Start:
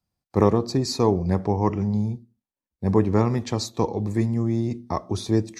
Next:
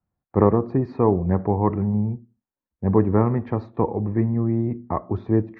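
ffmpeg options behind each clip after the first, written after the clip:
-af "lowpass=f=1.8k:w=0.5412,lowpass=f=1.8k:w=1.3066,volume=1.5dB"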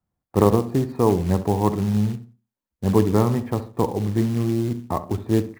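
-filter_complex "[0:a]acrusher=bits=5:mode=log:mix=0:aa=0.000001,asplit=2[a][b];[b]adelay=67,lowpass=f=1.4k:p=1,volume=-12dB,asplit=2[c][d];[d]adelay=67,lowpass=f=1.4k:p=1,volume=0.32,asplit=2[e][f];[f]adelay=67,lowpass=f=1.4k:p=1,volume=0.32[g];[a][c][e][g]amix=inputs=4:normalize=0"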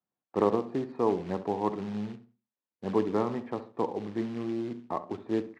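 -af "highpass=260,lowpass=3.5k,volume=-6.5dB"

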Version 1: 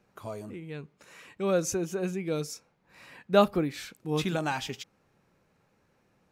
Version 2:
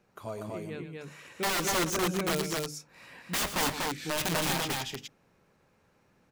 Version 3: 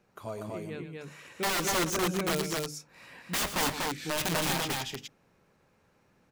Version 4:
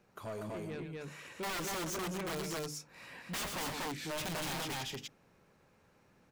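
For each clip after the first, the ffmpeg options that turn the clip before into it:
-filter_complex "[0:a]aeval=exprs='(mod(16.8*val(0)+1,2)-1)/16.8':c=same,bandreject=f=50:t=h:w=6,bandreject=f=100:t=h:w=6,bandreject=f=150:t=h:w=6,bandreject=f=200:t=h:w=6,bandreject=f=250:t=h:w=6,bandreject=f=300:t=h:w=6,asplit=2[a][b];[b]aecho=0:1:113.7|242:0.282|0.794[c];[a][c]amix=inputs=2:normalize=0"
-af anull
-af "asoftclip=type=tanh:threshold=-36dB"

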